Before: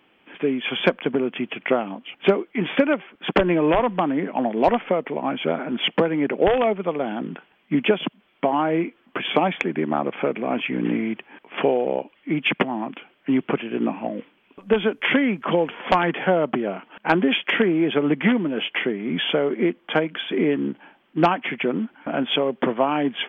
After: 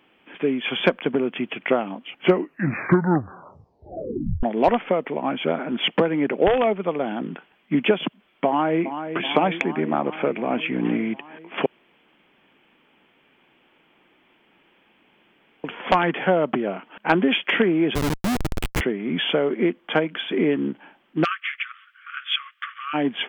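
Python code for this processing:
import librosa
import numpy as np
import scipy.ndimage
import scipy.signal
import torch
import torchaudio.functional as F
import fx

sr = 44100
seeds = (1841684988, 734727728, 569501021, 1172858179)

y = fx.echo_throw(x, sr, start_s=8.47, length_s=0.55, ms=380, feedback_pct=75, wet_db=-9.0)
y = fx.schmitt(y, sr, flips_db=-18.5, at=(17.95, 18.81))
y = fx.brickwall_highpass(y, sr, low_hz=1100.0, at=(21.23, 22.93), fade=0.02)
y = fx.edit(y, sr, fx.tape_stop(start_s=2.15, length_s=2.28),
    fx.room_tone_fill(start_s=11.66, length_s=3.98), tone=tone)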